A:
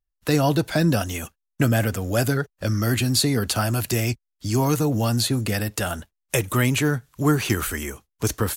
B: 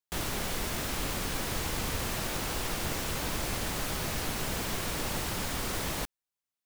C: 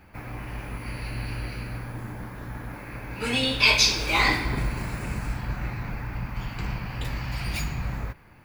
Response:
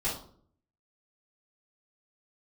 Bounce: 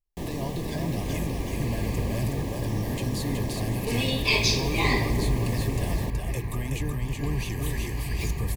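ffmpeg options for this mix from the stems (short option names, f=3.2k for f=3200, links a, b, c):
-filter_complex "[0:a]alimiter=limit=-18.5dB:level=0:latency=1:release=99,volume=-8dB,asplit=2[a][b];[b]volume=-3.5dB[c];[1:a]equalizer=f=270:w=0.32:g=14.5,adelay=50,volume=-10.5dB[d];[2:a]equalizer=f=400:w=4.8:g=13,adelay=650,volume=-5dB[e];[c]aecho=0:1:373|746|1119|1492|1865:1|0.37|0.137|0.0507|0.0187[f];[a][d][e][f]amix=inputs=4:normalize=0,asuperstop=centerf=1400:order=12:qfactor=3.5,lowshelf=f=140:g=7.5"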